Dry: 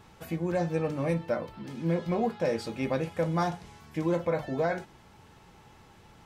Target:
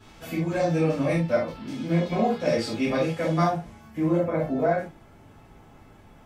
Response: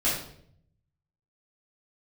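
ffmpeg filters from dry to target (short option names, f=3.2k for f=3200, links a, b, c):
-filter_complex "[0:a]asetnsamples=n=441:p=0,asendcmd='3.41 equalizer g -9',equalizer=f=4.5k:w=0.56:g=4.5[a];[1:a]atrim=start_sample=2205,atrim=end_sample=3969[b];[a][b]afir=irnorm=-1:irlink=0,volume=-6dB"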